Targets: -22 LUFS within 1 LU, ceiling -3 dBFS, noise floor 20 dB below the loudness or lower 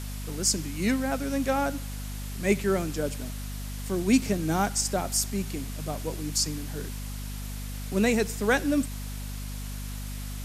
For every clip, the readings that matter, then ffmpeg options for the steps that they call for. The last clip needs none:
hum 50 Hz; harmonics up to 250 Hz; hum level -33 dBFS; noise floor -35 dBFS; noise floor target -49 dBFS; loudness -29.0 LUFS; peak -10.0 dBFS; loudness target -22.0 LUFS
-> -af "bandreject=f=50:t=h:w=6,bandreject=f=100:t=h:w=6,bandreject=f=150:t=h:w=6,bandreject=f=200:t=h:w=6,bandreject=f=250:t=h:w=6"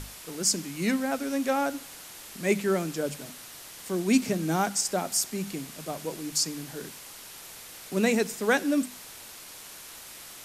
hum none; noise floor -45 dBFS; noise floor target -48 dBFS
-> -af "afftdn=nr=6:nf=-45"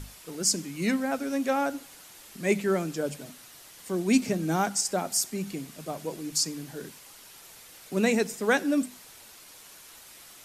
noise floor -50 dBFS; loudness -28.0 LUFS; peak -10.5 dBFS; loudness target -22.0 LUFS
-> -af "volume=6dB"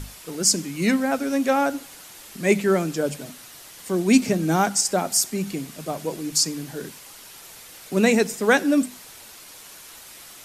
loudness -22.0 LUFS; peak -4.5 dBFS; noise floor -44 dBFS

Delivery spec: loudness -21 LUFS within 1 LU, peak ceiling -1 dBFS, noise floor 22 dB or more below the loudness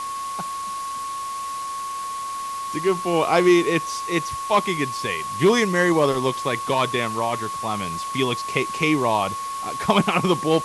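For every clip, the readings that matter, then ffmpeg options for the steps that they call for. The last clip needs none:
steady tone 1100 Hz; tone level -27 dBFS; noise floor -30 dBFS; noise floor target -45 dBFS; loudness -22.5 LUFS; peak -4.5 dBFS; loudness target -21.0 LUFS
-> -af "bandreject=f=1.1k:w=30"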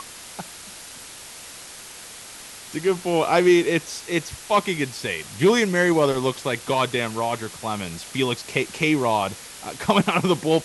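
steady tone none; noise floor -41 dBFS; noise floor target -44 dBFS
-> -af "afftdn=nr=6:nf=-41"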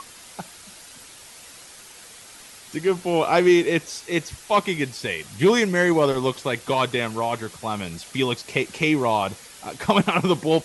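noise floor -45 dBFS; loudness -22.5 LUFS; peak -5.5 dBFS; loudness target -21.0 LUFS
-> -af "volume=1.5dB"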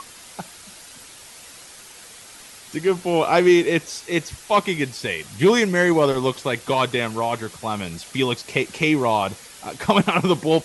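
loudness -21.0 LUFS; peak -4.0 dBFS; noise floor -43 dBFS

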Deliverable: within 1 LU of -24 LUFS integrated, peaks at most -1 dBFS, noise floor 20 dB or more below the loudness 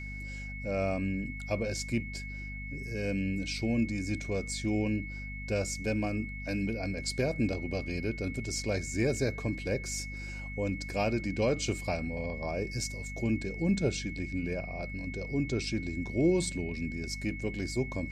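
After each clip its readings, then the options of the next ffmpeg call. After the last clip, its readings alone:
hum 50 Hz; harmonics up to 250 Hz; hum level -39 dBFS; steady tone 2200 Hz; tone level -42 dBFS; loudness -33.0 LUFS; peak -16.0 dBFS; loudness target -24.0 LUFS
-> -af "bandreject=f=50:t=h:w=4,bandreject=f=100:t=h:w=4,bandreject=f=150:t=h:w=4,bandreject=f=200:t=h:w=4,bandreject=f=250:t=h:w=4"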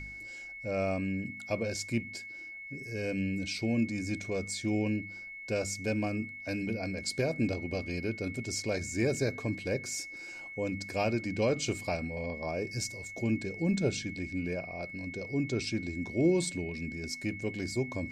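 hum none; steady tone 2200 Hz; tone level -42 dBFS
-> -af "bandreject=f=2.2k:w=30"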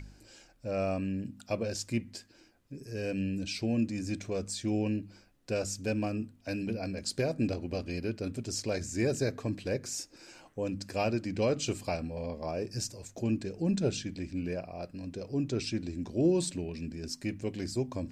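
steady tone none; loudness -34.0 LUFS; peak -16.5 dBFS; loudness target -24.0 LUFS
-> -af "volume=10dB"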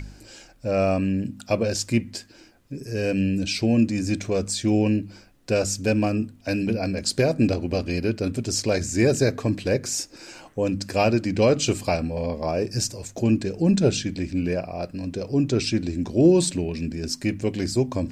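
loudness -24.0 LUFS; peak -6.5 dBFS; noise floor -51 dBFS

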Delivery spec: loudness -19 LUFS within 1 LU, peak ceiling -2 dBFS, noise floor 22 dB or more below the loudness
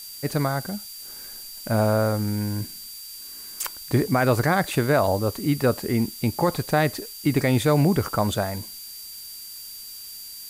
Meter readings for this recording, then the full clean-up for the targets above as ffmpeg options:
steady tone 4700 Hz; tone level -41 dBFS; noise floor -39 dBFS; noise floor target -46 dBFS; loudness -23.5 LUFS; peak -10.0 dBFS; loudness target -19.0 LUFS
-> -af "bandreject=f=4.7k:w=30"
-af "afftdn=nr=7:nf=-39"
-af "volume=4.5dB"

